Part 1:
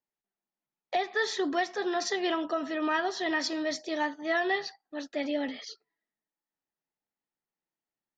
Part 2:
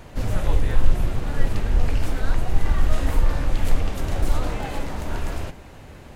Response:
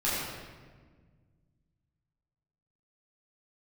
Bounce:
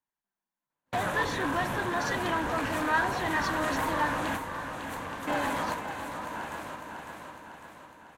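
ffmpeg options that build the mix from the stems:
-filter_complex "[0:a]lowshelf=frequency=230:gain=4.5,volume=-2.5dB,asplit=3[link_01][link_02][link_03];[link_01]atrim=end=4.28,asetpts=PTS-STARTPTS,afade=type=out:start_time=4.276:duration=0.004:curve=hsin[link_04];[link_02]atrim=start=4.28:end=5.27,asetpts=PTS-STARTPTS,volume=0[link_05];[link_03]atrim=start=5.27,asetpts=PTS-STARTPTS,afade=type=in:duration=0.004:curve=hsin[link_06];[link_04][link_05][link_06]concat=n=3:v=0:a=1,asplit=2[link_07][link_08];[1:a]highpass=210,adelay=700,volume=1dB,asplit=2[link_09][link_10];[link_10]volume=-8.5dB[link_11];[link_08]apad=whole_len=302269[link_12];[link_09][link_12]sidechaingate=range=-48dB:threshold=-46dB:ratio=16:detection=peak[link_13];[link_11]aecho=0:1:552|1104|1656|2208|2760|3312|3864|4416:1|0.54|0.292|0.157|0.085|0.0459|0.0248|0.0134[link_14];[link_07][link_13][link_14]amix=inputs=3:normalize=0,asoftclip=type=tanh:threshold=-24.5dB,equalizer=frequency=400:width_type=o:width=0.33:gain=-5,equalizer=frequency=1000:width_type=o:width=0.33:gain=11,equalizer=frequency=1600:width_type=o:width=0.33:gain=8,equalizer=frequency=5000:width_type=o:width=0.33:gain=-6"

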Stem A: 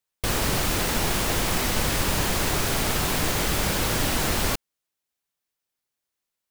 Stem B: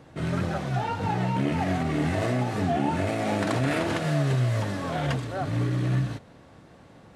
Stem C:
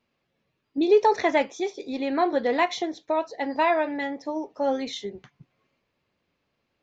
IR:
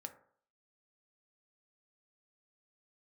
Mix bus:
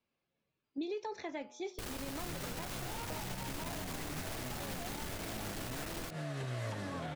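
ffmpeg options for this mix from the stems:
-filter_complex "[0:a]aeval=exprs='clip(val(0),-1,0.0355)':channel_layout=same,adelay=1550,volume=-11.5dB[link_01];[1:a]adelay=2100,volume=-3dB[link_02];[2:a]bandreject=frequency=1900:width=14,bandreject=frequency=121.6:width_type=h:width=4,bandreject=frequency=243.2:width_type=h:width=4,bandreject=frequency=364.8:width_type=h:width=4,bandreject=frequency=486.4:width_type=h:width=4,bandreject=frequency=608:width_type=h:width=4,bandreject=frequency=729.6:width_type=h:width=4,bandreject=frequency=851.2:width_type=h:width=4,bandreject=frequency=972.8:width_type=h:width=4,bandreject=frequency=1094.4:width_type=h:width=4,bandreject=frequency=1216:width_type=h:width=4,bandreject=frequency=1337.6:width_type=h:width=4,bandreject=frequency=1459.2:width_type=h:width=4,volume=-10dB[link_03];[link_02][link_03]amix=inputs=2:normalize=0,acrossover=split=330|1200[link_04][link_05][link_06];[link_04]acompressor=threshold=-39dB:ratio=4[link_07];[link_05]acompressor=threshold=-42dB:ratio=4[link_08];[link_06]acompressor=threshold=-45dB:ratio=4[link_09];[link_07][link_08][link_09]amix=inputs=3:normalize=0,alimiter=level_in=6.5dB:limit=-24dB:level=0:latency=1:release=331,volume=-6.5dB,volume=0dB[link_10];[link_01][link_10]amix=inputs=2:normalize=0,alimiter=level_in=6.5dB:limit=-24dB:level=0:latency=1:release=127,volume=-6.5dB"

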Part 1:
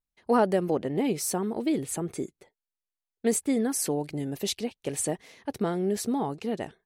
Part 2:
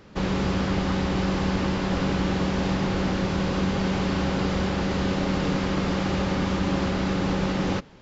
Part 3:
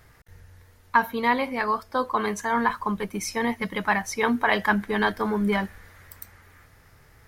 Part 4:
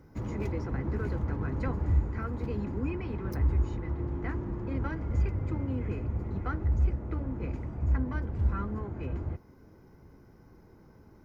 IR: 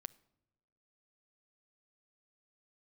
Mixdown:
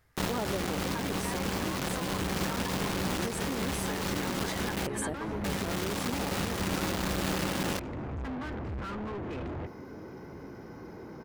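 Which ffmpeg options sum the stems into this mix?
-filter_complex "[0:a]volume=-5.5dB[link_01];[1:a]highpass=55,acrusher=bits=3:mix=0:aa=0.000001,volume=-5dB,asplit=3[link_02][link_03][link_04];[link_02]atrim=end=4.87,asetpts=PTS-STARTPTS,afade=type=out:start_time=4.866:duration=0.004:curve=hsin[link_05];[link_03]atrim=start=4.87:end=5.44,asetpts=PTS-STARTPTS,volume=0[link_06];[link_04]atrim=start=5.44,asetpts=PTS-STARTPTS,afade=type=in:duration=0.004:curve=hsin[link_07];[link_05][link_06][link_07]concat=n=3:v=0:a=1[link_08];[2:a]volume=-13dB[link_09];[3:a]equalizer=frequency=1100:width=0.59:gain=-6.5,asplit=2[link_10][link_11];[link_11]highpass=frequency=720:poles=1,volume=44dB,asoftclip=type=tanh:threshold=-15dB[link_12];[link_10][link_12]amix=inputs=2:normalize=0,lowpass=frequency=1700:poles=1,volume=-6dB,adelay=300,volume=-14dB[link_13];[link_01][link_08][link_09][link_13]amix=inputs=4:normalize=0,alimiter=limit=-23dB:level=0:latency=1:release=197"

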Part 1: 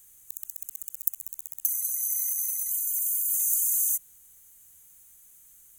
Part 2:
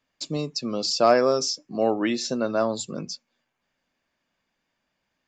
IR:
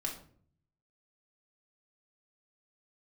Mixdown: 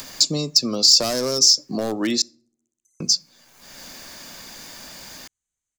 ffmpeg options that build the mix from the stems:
-filter_complex "[0:a]lowpass=frequency=6900:width=0.5412,lowpass=frequency=6900:width=1.3066,adelay=1200,volume=-19.5dB[link_01];[1:a]acompressor=mode=upward:threshold=-23dB:ratio=2.5,asoftclip=type=hard:threshold=-16dB,aexciter=amount=3:drive=7.5:freq=4000,volume=2.5dB,asplit=3[link_02][link_03][link_04];[link_02]atrim=end=2.22,asetpts=PTS-STARTPTS,afade=type=out:start_time=2.216:duration=0.004:curve=hsin[link_05];[link_03]atrim=start=2.22:end=3,asetpts=PTS-STARTPTS,volume=0[link_06];[link_04]atrim=start=3,asetpts=PTS-STARTPTS,afade=type=in:duration=0.004:curve=hsin[link_07];[link_05][link_06][link_07]concat=n=3:v=0:a=1,asplit=3[link_08][link_09][link_10];[link_09]volume=-22.5dB[link_11];[link_10]apad=whole_len=308074[link_12];[link_01][link_12]sidechaincompress=threshold=-27dB:ratio=8:attack=9.4:release=1360[link_13];[2:a]atrim=start_sample=2205[link_14];[link_11][link_14]afir=irnorm=-1:irlink=0[link_15];[link_13][link_08][link_15]amix=inputs=3:normalize=0,acrossover=split=310|3000[link_16][link_17][link_18];[link_17]acompressor=threshold=-25dB:ratio=6[link_19];[link_16][link_19][link_18]amix=inputs=3:normalize=0"

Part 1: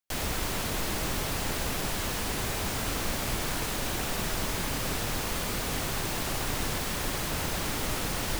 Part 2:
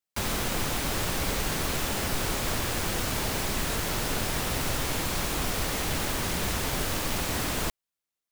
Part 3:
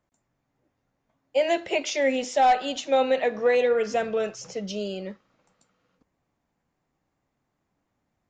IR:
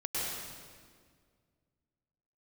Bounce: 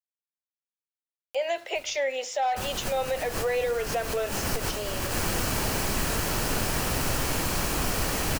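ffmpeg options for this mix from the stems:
-filter_complex "[0:a]aeval=exprs='val(0)*pow(10,-26*(0.5-0.5*cos(2*PI*0.87*n/s))/20)':channel_layout=same,adelay=1650,volume=-16.5dB[link_01];[1:a]equalizer=frequency=3600:width=6.6:gain=-7.5,bandreject=frequency=2100:width=18,adelay=2400,volume=2dB[link_02];[2:a]highpass=frequency=470:width=0.5412,highpass=frequency=470:width=1.3066,alimiter=limit=-19.5dB:level=0:latency=1:release=161,aeval=exprs='val(0)*gte(abs(val(0)),0.00335)':channel_layout=same,volume=0dB,asplit=2[link_03][link_04];[link_04]apad=whole_len=472509[link_05];[link_02][link_05]sidechaincompress=threshold=-38dB:ratio=10:attack=7.9:release=113[link_06];[link_01][link_06][link_03]amix=inputs=3:normalize=0,acompressor=mode=upward:threshold=-36dB:ratio=2.5"

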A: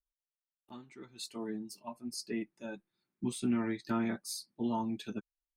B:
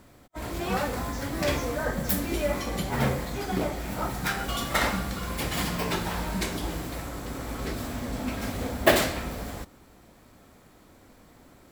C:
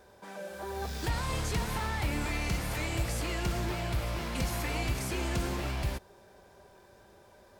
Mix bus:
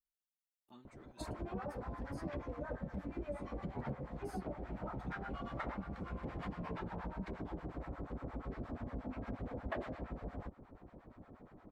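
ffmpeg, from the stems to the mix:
ffmpeg -i stem1.wav -i stem2.wav -i stem3.wav -filter_complex "[0:a]acompressor=threshold=-36dB:ratio=6,volume=-9.5dB[link_01];[1:a]lowpass=1200,acrossover=split=760[link_02][link_03];[link_02]aeval=exprs='val(0)*(1-1/2+1/2*cos(2*PI*8.5*n/s))':channel_layout=same[link_04];[link_03]aeval=exprs='val(0)*(1-1/2-1/2*cos(2*PI*8.5*n/s))':channel_layout=same[link_05];[link_04][link_05]amix=inputs=2:normalize=0,adelay=850,volume=3dB[link_06];[2:a]lowpass=1700,adelay=950,volume=-11.5dB[link_07];[link_01][link_07]amix=inputs=2:normalize=0,acompressor=threshold=-47dB:ratio=6,volume=0dB[link_08];[link_06][link_08]amix=inputs=2:normalize=0,highshelf=frequency=7200:gain=7,acompressor=threshold=-41dB:ratio=4" out.wav

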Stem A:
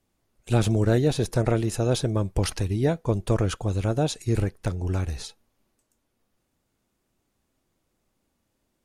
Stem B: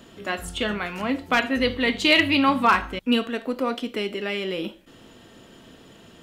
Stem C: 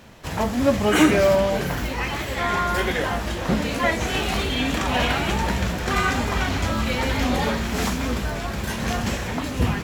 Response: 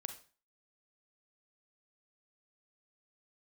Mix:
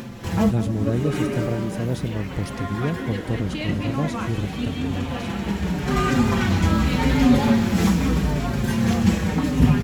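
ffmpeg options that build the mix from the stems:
-filter_complex "[0:a]volume=-10dB,asplit=2[link_01][link_02];[1:a]adelay=1500,volume=-16dB[link_03];[2:a]bandreject=frequency=640:width=15,asplit=2[link_04][link_05];[link_05]adelay=5.3,afreqshift=-0.81[link_06];[link_04][link_06]amix=inputs=2:normalize=1,volume=1dB,asplit=2[link_07][link_08];[link_08]volume=-12dB[link_09];[link_02]apad=whole_len=433964[link_10];[link_07][link_10]sidechaincompress=threshold=-47dB:ratio=8:attack=12:release=948[link_11];[link_09]aecho=0:1:192|384|576|768|960|1152|1344:1|0.48|0.23|0.111|0.0531|0.0255|0.0122[link_12];[link_01][link_03][link_11][link_12]amix=inputs=4:normalize=0,equalizer=frequency=170:width=0.61:gain=11,acompressor=mode=upward:threshold=-28dB:ratio=2.5"

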